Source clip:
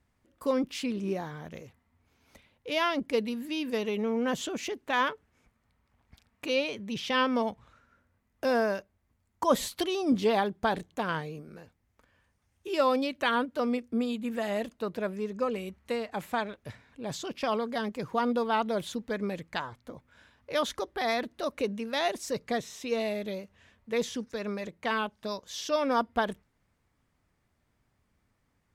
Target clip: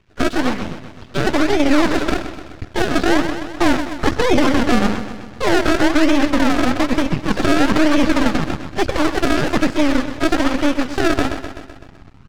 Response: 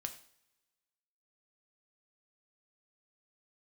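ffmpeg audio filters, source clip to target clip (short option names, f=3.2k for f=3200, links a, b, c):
-filter_complex "[0:a]asubboost=boost=10:cutoff=170,bandreject=f=50:t=h:w=6,bandreject=f=100:t=h:w=6,bandreject=f=150:t=h:w=6,bandreject=f=200:t=h:w=6,bandreject=f=250:t=h:w=6,acrossover=split=1200[a][b];[a]acrusher=samples=40:mix=1:aa=0.000001:lfo=1:lforange=40:lforate=0.47[c];[b]acompressor=threshold=-46dB:ratio=12[d];[c][d]amix=inputs=2:normalize=0,asetrate=103194,aresample=44100,lowpass=9.4k,equalizer=f=2.6k:w=1.5:g=4.5,asetrate=24750,aresample=44100,atempo=1.7818,aecho=1:1:127|254|381|508|635|762|889:0.251|0.148|0.0874|0.0516|0.0304|0.018|0.0106,aeval=exprs='max(val(0),0)':c=same,alimiter=level_in=20.5dB:limit=-1dB:release=50:level=0:latency=1,volume=-2.5dB" -ar 48000 -c:a libvorbis -b:a 96k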